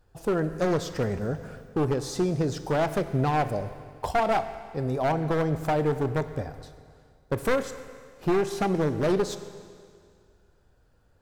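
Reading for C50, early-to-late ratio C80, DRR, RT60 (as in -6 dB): 12.0 dB, 12.5 dB, 10.5 dB, 2.1 s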